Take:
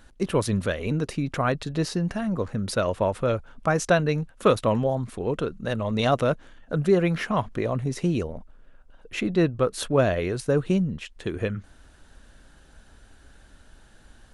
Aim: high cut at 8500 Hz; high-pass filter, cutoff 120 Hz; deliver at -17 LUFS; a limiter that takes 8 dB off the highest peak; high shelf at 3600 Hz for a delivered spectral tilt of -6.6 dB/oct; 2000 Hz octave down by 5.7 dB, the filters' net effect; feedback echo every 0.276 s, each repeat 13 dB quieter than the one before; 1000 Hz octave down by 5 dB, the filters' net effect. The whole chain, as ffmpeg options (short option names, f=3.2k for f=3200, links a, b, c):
-af "highpass=120,lowpass=8.5k,equalizer=f=1k:t=o:g=-5.5,equalizer=f=2k:t=o:g=-4,highshelf=f=3.6k:g=-6,alimiter=limit=-17.5dB:level=0:latency=1,aecho=1:1:276|552|828:0.224|0.0493|0.0108,volume=12dB"